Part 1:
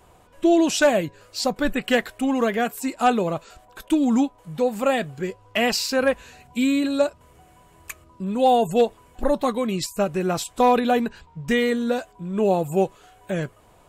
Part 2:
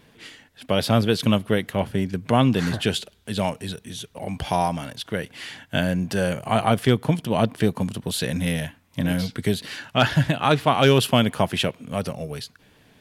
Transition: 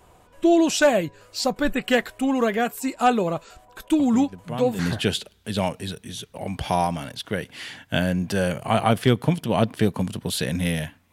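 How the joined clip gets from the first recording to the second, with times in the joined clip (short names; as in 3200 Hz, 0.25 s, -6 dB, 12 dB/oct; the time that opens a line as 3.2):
part 1
3.99 add part 2 from 1.8 s 0.80 s -13 dB
4.79 switch to part 2 from 2.6 s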